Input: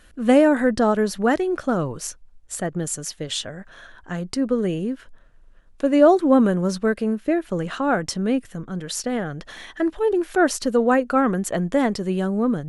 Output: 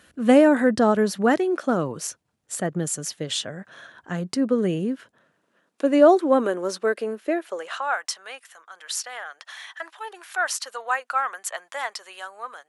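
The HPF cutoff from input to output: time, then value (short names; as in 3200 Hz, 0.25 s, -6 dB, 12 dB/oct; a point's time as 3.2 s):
HPF 24 dB/oct
1.19 s 86 Hz
1.58 s 250 Hz
2.04 s 110 Hz
4.92 s 110 Hz
6.19 s 320 Hz
7.23 s 320 Hz
7.98 s 850 Hz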